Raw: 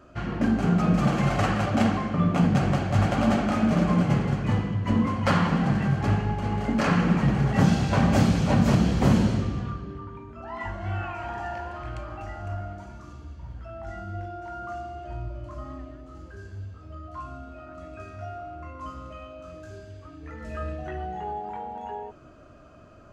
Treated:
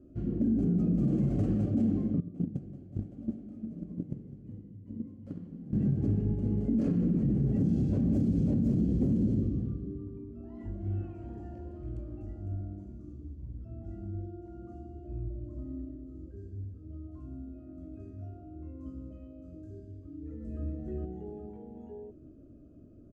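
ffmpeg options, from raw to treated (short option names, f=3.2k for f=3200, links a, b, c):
-filter_complex "[0:a]asettb=1/sr,asplit=3[a][b][c];[a]atrim=end=2.204[d];[b]atrim=start=2.2:end=5.73,asetpts=PTS-STARTPTS,afade=t=in:d=0.004:c=qsin,afade=t=out:st=3.526:d=0.004:c=qsin,agate=range=-19dB:threshold=-18dB:ratio=16:release=100:detection=peak[e];[c]atrim=start=5.726[f];[d][e]acrossfade=d=0.004:c1=hsin:c2=qsin[g];[g][f]acrossfade=d=0.004:c1=qsin:c2=hsin,asplit=2[h][i];[i]afade=t=in:st=13.43:d=0.01,afade=t=out:st=13.86:d=0.01,aecho=0:1:220|440|660:0.707946|0.106192|0.0159288[j];[h][j]amix=inputs=2:normalize=0,asplit=2[k][l];[l]afade=t=in:st=20.17:d=0.01,afade=t=out:st=20.64:d=0.01,aecho=0:1:410|820|1230|1640|2050:0.668344|0.267338|0.106935|0.042774|0.0171096[m];[k][m]amix=inputs=2:normalize=0,firequalizer=gain_entry='entry(170,0);entry(280,6);entry(890,-28);entry(8500,-17)':delay=0.05:min_phase=1,alimiter=limit=-17.5dB:level=0:latency=1:release=53,volume=-2.5dB"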